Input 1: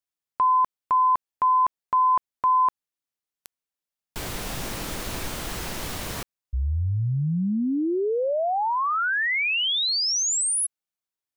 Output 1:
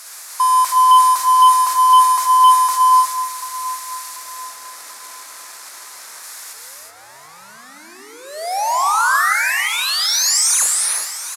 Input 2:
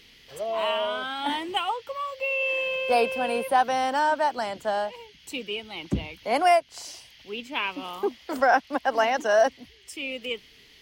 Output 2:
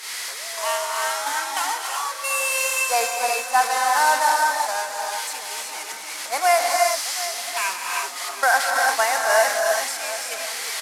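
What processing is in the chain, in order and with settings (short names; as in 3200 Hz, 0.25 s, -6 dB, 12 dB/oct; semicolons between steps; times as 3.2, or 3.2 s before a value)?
delta modulation 64 kbps, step -23 dBFS; HPF 1100 Hz 12 dB/oct; gate -29 dBFS, range -14 dB; bell 3000 Hz -12 dB 0.68 oct; harmonic-percussive split harmonic +4 dB; feedback echo 0.737 s, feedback 40%, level -15 dB; non-linear reverb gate 0.4 s rising, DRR 0.5 dB; added harmonics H 5 -34 dB, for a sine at -11 dBFS; gain +5 dB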